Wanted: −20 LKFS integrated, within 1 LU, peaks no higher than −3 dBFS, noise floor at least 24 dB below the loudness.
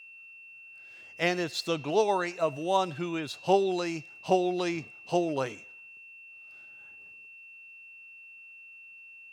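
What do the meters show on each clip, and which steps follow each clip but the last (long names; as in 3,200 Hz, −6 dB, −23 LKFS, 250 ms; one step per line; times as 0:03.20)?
interfering tone 2,700 Hz; level of the tone −47 dBFS; integrated loudness −29.5 LKFS; sample peak −10.5 dBFS; target loudness −20.0 LKFS
→ notch filter 2,700 Hz, Q 30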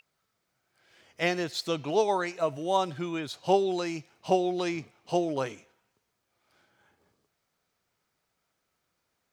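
interfering tone none found; integrated loudness −29.5 LKFS; sample peak −10.5 dBFS; target loudness −20.0 LKFS
→ level +9.5 dB
brickwall limiter −3 dBFS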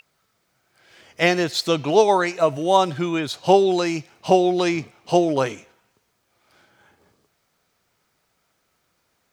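integrated loudness −20.0 LKFS; sample peak −3.0 dBFS; background noise floor −70 dBFS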